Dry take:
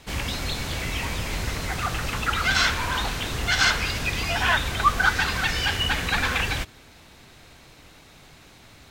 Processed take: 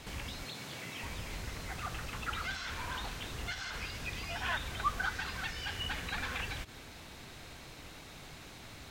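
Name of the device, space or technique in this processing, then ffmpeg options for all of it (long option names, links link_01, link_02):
de-esser from a sidechain: -filter_complex "[0:a]asplit=2[link_01][link_02];[link_02]highpass=frequency=5900:width=0.5412,highpass=frequency=5900:width=1.3066,apad=whole_len=392696[link_03];[link_01][link_03]sidechaincompress=threshold=-53dB:ratio=5:attack=1.8:release=75,asettb=1/sr,asplit=3[link_04][link_05][link_06];[link_04]atrim=end=0.444[link_07];[link_05]atrim=start=0.44:end=1.03,asetpts=PTS-STARTPTS,afade=type=in:duration=0.004:curve=qsin,afade=type=out:start_time=0.586:duration=0.004:curve=qsin,highpass=frequency=120:width=0.5412,highpass=frequency=120:width=1.3066[link_08];[link_06]atrim=start=1.026[link_09];[link_07][link_08]acrossfade=duration=0.004:curve1=hsin:curve2=qsin[link_10];[link_10][link_09]acrossfade=duration=0.004:curve1=qsin:curve2=hsin"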